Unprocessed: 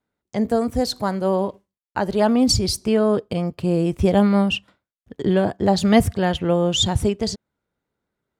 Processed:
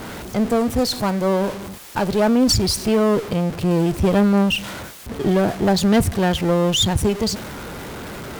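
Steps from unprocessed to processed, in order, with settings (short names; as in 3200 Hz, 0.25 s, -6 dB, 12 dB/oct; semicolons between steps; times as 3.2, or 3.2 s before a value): zero-crossing step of -26 dBFS; tube stage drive 12 dB, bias 0.45; mismatched tape noise reduction decoder only; gain +2.5 dB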